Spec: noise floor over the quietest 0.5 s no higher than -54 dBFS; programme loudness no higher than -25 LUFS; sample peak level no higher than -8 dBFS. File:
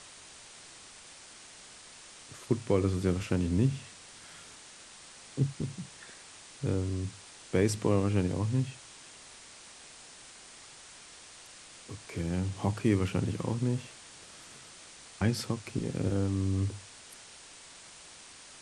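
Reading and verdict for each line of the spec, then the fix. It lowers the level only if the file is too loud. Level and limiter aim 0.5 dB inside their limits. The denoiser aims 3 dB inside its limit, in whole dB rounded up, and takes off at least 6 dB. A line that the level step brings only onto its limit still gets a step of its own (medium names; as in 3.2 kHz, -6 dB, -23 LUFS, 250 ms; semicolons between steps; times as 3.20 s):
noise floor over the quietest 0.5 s -51 dBFS: fail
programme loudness -31.5 LUFS: pass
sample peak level -13.5 dBFS: pass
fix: noise reduction 6 dB, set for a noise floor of -51 dBFS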